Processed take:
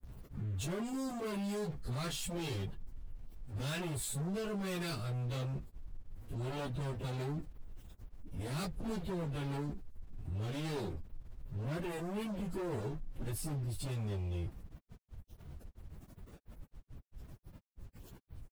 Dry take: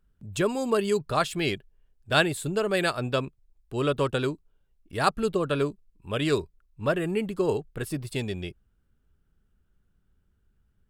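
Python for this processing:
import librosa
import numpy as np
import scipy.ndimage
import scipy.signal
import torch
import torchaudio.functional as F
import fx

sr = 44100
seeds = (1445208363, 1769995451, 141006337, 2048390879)

y = fx.tone_stack(x, sr, knobs='10-0-1')
y = fx.leveller(y, sr, passes=5)
y = np.where(np.abs(y) >= 10.0 ** (-59.0 / 20.0), y, 0.0)
y = fx.stretch_vocoder_free(y, sr, factor=1.7)
y = fx.env_flatten(y, sr, amount_pct=50)
y = y * 10.0 ** (-1.0 / 20.0)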